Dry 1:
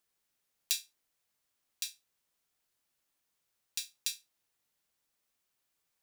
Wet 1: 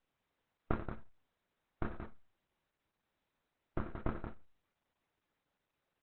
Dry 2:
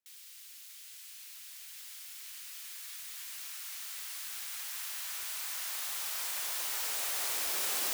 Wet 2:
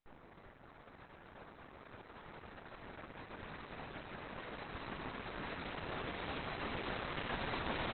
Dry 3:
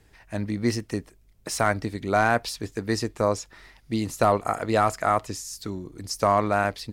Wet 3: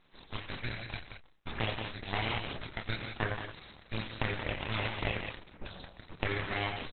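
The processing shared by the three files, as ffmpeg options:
-filter_complex "[0:a]afftfilt=real='re*between(b*sr/4096,170,4400)':imag='im*between(b*sr/4096,170,4400)':win_size=4096:overlap=0.75,aderivative,acompressor=threshold=-44dB:ratio=5,asplit=2[a][b];[b]adelay=27,volume=-4dB[c];[a][c]amix=inputs=2:normalize=0,aecho=1:1:87.46|177.8:0.282|0.447,aeval=exprs='abs(val(0))':c=same,volume=17.5dB" -ar 48000 -c:a libopus -b:a 8k

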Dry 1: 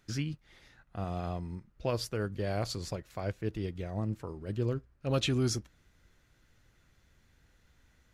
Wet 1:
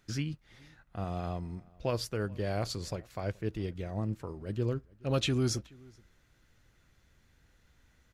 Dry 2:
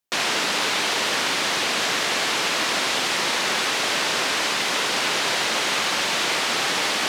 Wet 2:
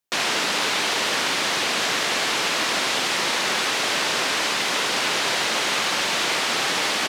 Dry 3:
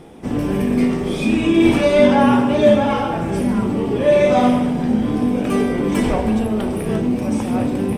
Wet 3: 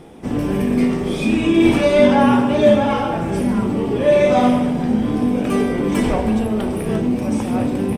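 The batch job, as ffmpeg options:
-filter_complex "[0:a]asplit=2[a][b];[b]adelay=425.7,volume=-25dB,highshelf=f=4k:g=-9.58[c];[a][c]amix=inputs=2:normalize=0"

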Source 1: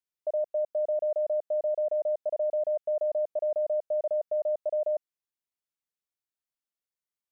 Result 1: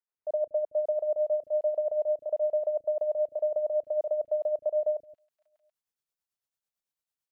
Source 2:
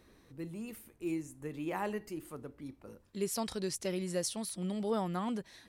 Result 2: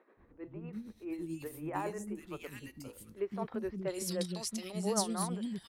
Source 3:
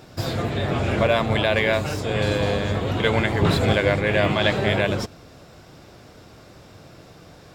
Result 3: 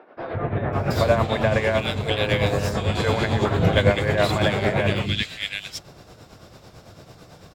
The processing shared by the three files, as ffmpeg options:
-filter_complex "[0:a]acrossover=split=310|2100[a][b][c];[a]adelay=170[d];[c]adelay=730[e];[d][b][e]amix=inputs=3:normalize=0,tremolo=f=9:d=0.55,volume=3.5dB"

